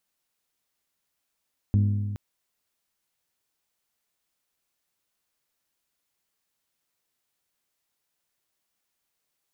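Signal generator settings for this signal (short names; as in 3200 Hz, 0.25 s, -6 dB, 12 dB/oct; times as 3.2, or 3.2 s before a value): metal hit bell, length 0.42 s, lowest mode 102 Hz, modes 7, decay 1.82 s, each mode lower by 8 dB, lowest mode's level -16.5 dB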